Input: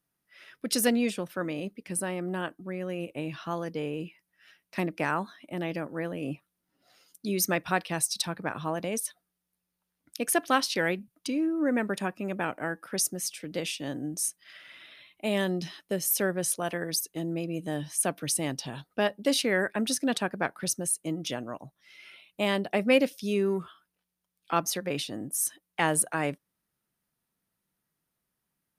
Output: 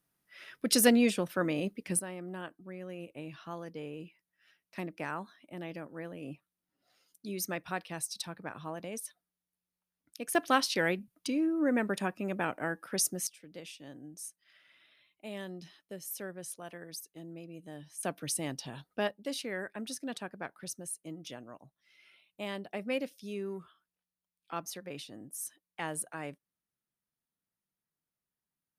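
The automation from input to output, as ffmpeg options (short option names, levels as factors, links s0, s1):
-af "asetnsamples=n=441:p=0,asendcmd='1.99 volume volume -9dB;10.35 volume volume -2dB;13.27 volume volume -14dB;18.03 volume volume -5.5dB;19.11 volume volume -11.5dB',volume=1.19"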